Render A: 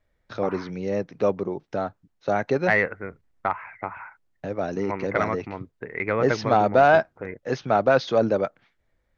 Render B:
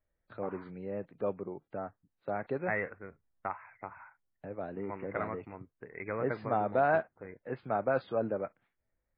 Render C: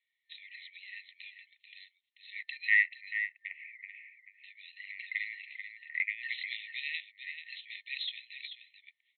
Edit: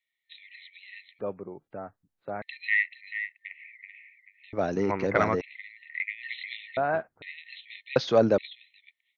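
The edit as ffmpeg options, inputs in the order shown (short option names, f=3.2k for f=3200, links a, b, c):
-filter_complex "[1:a]asplit=2[a][b];[0:a]asplit=2[c][d];[2:a]asplit=5[e][f][g][h][i];[e]atrim=end=1.192[j];[a]atrim=start=1.188:end=2.422[k];[f]atrim=start=2.418:end=4.532[l];[c]atrim=start=4.528:end=5.412[m];[g]atrim=start=5.408:end=6.772[n];[b]atrim=start=6.768:end=7.222[o];[h]atrim=start=7.218:end=7.962[p];[d]atrim=start=7.958:end=8.382[q];[i]atrim=start=8.378[r];[j][k]acrossfade=d=0.004:c1=hsin:c2=hsin[s];[s][l]acrossfade=d=0.004:c1=hsin:c2=hsin[t];[t][m]acrossfade=d=0.004:c1=hsin:c2=hsin[u];[u][n]acrossfade=d=0.004:c1=hsin:c2=hsin[v];[v][o]acrossfade=d=0.004:c1=hsin:c2=hsin[w];[w][p]acrossfade=d=0.004:c1=hsin:c2=hsin[x];[x][q]acrossfade=d=0.004:c1=hsin:c2=hsin[y];[y][r]acrossfade=d=0.004:c1=hsin:c2=hsin"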